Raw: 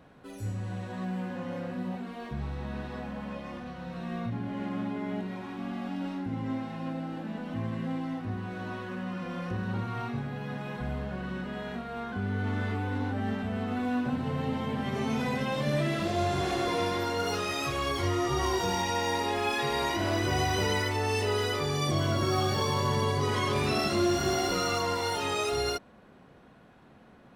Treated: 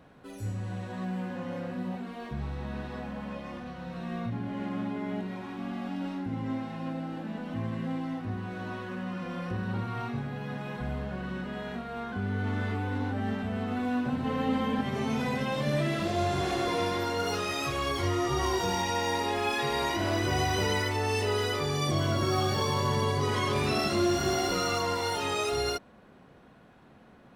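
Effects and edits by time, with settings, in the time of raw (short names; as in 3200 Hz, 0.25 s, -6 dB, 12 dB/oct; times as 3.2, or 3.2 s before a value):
9.35–10.01 notch 6500 Hz
14.24–14.81 comb 3.9 ms, depth 81%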